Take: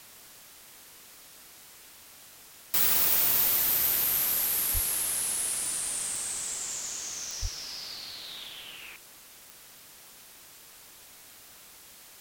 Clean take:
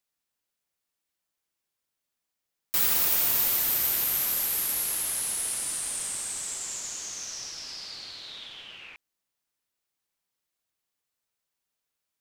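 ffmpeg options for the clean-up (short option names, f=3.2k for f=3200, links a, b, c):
-filter_complex "[0:a]adeclick=t=4,asplit=3[a][b][c];[a]afade=t=out:st=4.73:d=0.02[d];[b]highpass=f=140:w=0.5412,highpass=f=140:w=1.3066,afade=t=in:st=4.73:d=0.02,afade=t=out:st=4.85:d=0.02[e];[c]afade=t=in:st=4.85:d=0.02[f];[d][e][f]amix=inputs=3:normalize=0,asplit=3[g][h][i];[g]afade=t=out:st=7.41:d=0.02[j];[h]highpass=f=140:w=0.5412,highpass=f=140:w=1.3066,afade=t=in:st=7.41:d=0.02,afade=t=out:st=7.53:d=0.02[k];[i]afade=t=in:st=7.53:d=0.02[l];[j][k][l]amix=inputs=3:normalize=0,afwtdn=0.0032"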